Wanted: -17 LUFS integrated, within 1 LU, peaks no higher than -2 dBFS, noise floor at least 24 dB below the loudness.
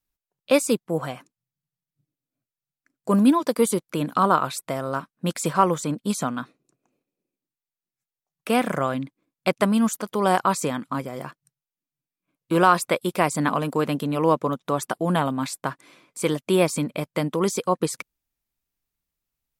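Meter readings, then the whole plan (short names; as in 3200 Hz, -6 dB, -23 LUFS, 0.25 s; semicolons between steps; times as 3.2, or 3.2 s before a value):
loudness -23.5 LUFS; peak -4.5 dBFS; loudness target -17.0 LUFS
-> gain +6.5 dB; limiter -2 dBFS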